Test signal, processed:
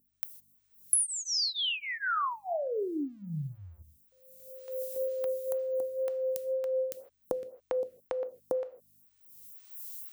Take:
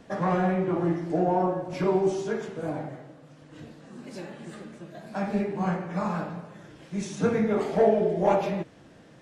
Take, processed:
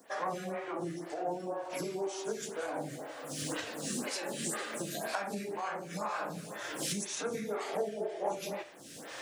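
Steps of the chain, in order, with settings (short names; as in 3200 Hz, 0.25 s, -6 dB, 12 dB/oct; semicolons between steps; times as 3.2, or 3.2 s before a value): recorder AGC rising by 27 dB/s; high shelf 7100 Hz +5 dB; hum 50 Hz, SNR 35 dB; RIAA curve recording; non-linear reverb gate 0.18 s falling, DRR 11 dB; compressor 4:1, threshold -23 dBFS; photocell phaser 2 Hz; gain -5 dB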